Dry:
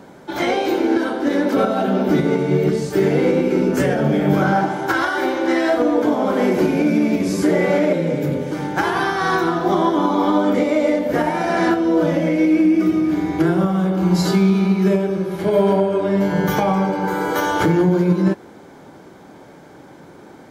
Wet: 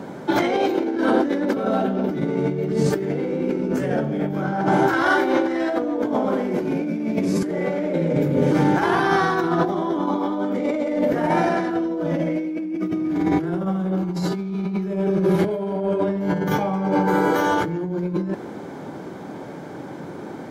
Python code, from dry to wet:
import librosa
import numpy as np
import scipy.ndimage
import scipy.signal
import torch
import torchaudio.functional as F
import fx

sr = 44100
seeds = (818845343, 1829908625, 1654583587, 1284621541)

y = scipy.signal.sosfilt(scipy.signal.butter(2, 120.0, 'highpass', fs=sr, output='sos'), x)
y = fx.tilt_eq(y, sr, slope=-1.5)
y = fx.over_compress(y, sr, threshold_db=-22.0, ratio=-1.0)